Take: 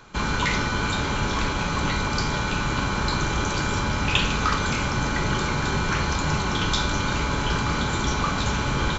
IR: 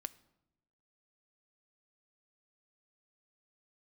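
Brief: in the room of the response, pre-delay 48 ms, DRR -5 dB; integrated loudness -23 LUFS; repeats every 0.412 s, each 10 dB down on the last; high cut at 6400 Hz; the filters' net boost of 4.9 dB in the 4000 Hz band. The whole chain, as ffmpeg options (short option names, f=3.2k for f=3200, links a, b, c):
-filter_complex "[0:a]lowpass=6.4k,equalizer=f=4k:t=o:g=6.5,aecho=1:1:412|824|1236|1648:0.316|0.101|0.0324|0.0104,asplit=2[a][b];[1:a]atrim=start_sample=2205,adelay=48[c];[b][c]afir=irnorm=-1:irlink=0,volume=8dB[d];[a][d]amix=inputs=2:normalize=0,volume=-7dB"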